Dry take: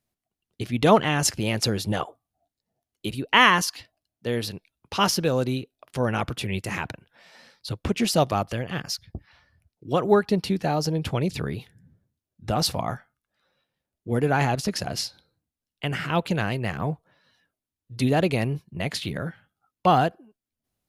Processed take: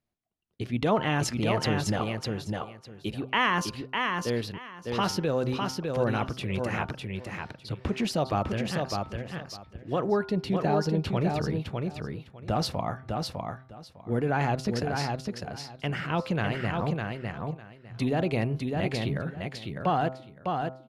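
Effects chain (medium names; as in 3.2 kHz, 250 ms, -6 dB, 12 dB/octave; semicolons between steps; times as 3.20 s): low-pass 2.7 kHz 6 dB/octave; de-hum 130.1 Hz, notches 11; in parallel at -2 dB: compressor with a negative ratio -23 dBFS, ratio -0.5; on the sum: feedback delay 604 ms, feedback 18%, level -4 dB; trim -8 dB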